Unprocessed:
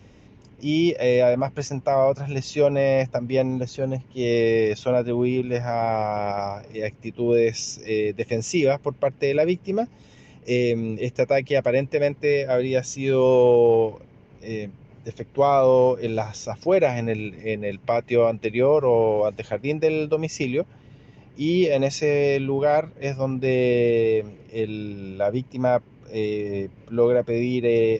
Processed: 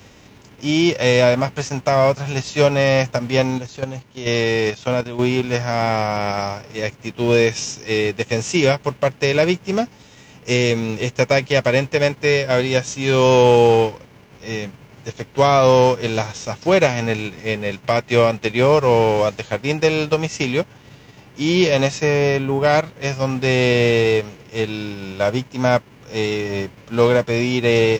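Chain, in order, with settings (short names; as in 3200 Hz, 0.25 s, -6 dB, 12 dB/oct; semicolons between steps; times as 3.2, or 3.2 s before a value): spectral whitening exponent 0.6; 3.58–5.19 level quantiser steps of 11 dB; 21.9–22.63 bell 4100 Hz -3 dB -> -13 dB 1.7 oct; gain +4 dB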